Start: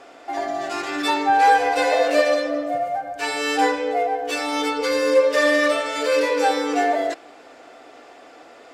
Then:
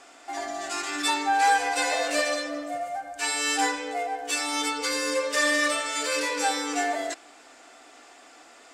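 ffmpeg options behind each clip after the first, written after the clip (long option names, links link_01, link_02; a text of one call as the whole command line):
ffmpeg -i in.wav -af "equalizer=frequency=125:width_type=o:width=1:gain=-12,equalizer=frequency=500:width_type=o:width=1:gain=-9,equalizer=frequency=8000:width_type=o:width=1:gain=11,volume=-3dB" out.wav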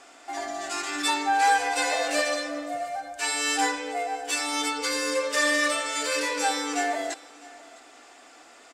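ffmpeg -i in.wav -af "aecho=1:1:658:0.0841" out.wav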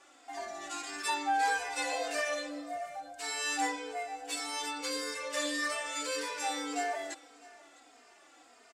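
ffmpeg -i in.wav -filter_complex "[0:a]asplit=2[link_01][link_02];[link_02]adelay=3,afreqshift=-1.7[link_03];[link_01][link_03]amix=inputs=2:normalize=1,volume=-5.5dB" out.wav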